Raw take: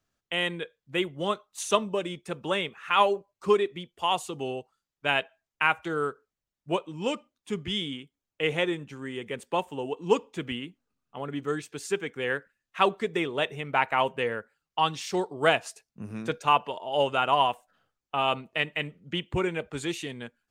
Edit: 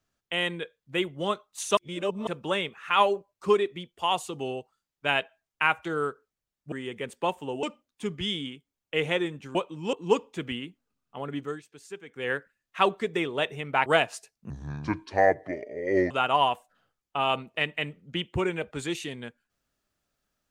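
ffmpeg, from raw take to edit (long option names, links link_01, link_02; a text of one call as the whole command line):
ffmpeg -i in.wav -filter_complex "[0:a]asplit=12[link_01][link_02][link_03][link_04][link_05][link_06][link_07][link_08][link_09][link_10][link_11][link_12];[link_01]atrim=end=1.772[link_13];[link_02]atrim=start=1.768:end=2.272,asetpts=PTS-STARTPTS,areverse[link_14];[link_03]atrim=start=2.268:end=6.722[link_15];[link_04]atrim=start=9.018:end=9.932[link_16];[link_05]atrim=start=7.098:end=9.022[link_17];[link_06]atrim=start=6.718:end=7.102[link_18];[link_07]atrim=start=9.928:end=11.61,asetpts=PTS-STARTPTS,afade=type=out:start_time=1.452:duration=0.23:silence=0.251189[link_19];[link_08]atrim=start=11.61:end=12.07,asetpts=PTS-STARTPTS,volume=-12dB[link_20];[link_09]atrim=start=12.07:end=13.862,asetpts=PTS-STARTPTS,afade=type=in:duration=0.23:silence=0.251189[link_21];[link_10]atrim=start=15.388:end=16.034[link_22];[link_11]atrim=start=16.03:end=17.09,asetpts=PTS-STARTPTS,asetrate=29106,aresample=44100,atrim=end_sample=70827,asetpts=PTS-STARTPTS[link_23];[link_12]atrim=start=17.086[link_24];[link_13][link_14]acrossfade=duration=0.004:curve1=hsin:curve2=hsin[link_25];[link_25][link_15]acrossfade=duration=0.004:curve1=hsin:curve2=hsin[link_26];[link_26][link_16]acrossfade=duration=0.004:curve1=hsin:curve2=hsin[link_27];[link_27][link_17]acrossfade=duration=0.004:curve1=hsin:curve2=hsin[link_28];[link_28][link_18]acrossfade=duration=0.004:curve1=hsin:curve2=hsin[link_29];[link_19][link_20][link_21]concat=n=3:v=0:a=1[link_30];[link_29][link_30]acrossfade=duration=0.004:curve1=hsin:curve2=hsin[link_31];[link_31][link_22]acrossfade=duration=0.004:curve1=hsin:curve2=hsin[link_32];[link_32][link_23]acrossfade=duration=0.004:curve1=hsin:curve2=hsin[link_33];[link_33][link_24]acrossfade=duration=0.004:curve1=hsin:curve2=hsin" out.wav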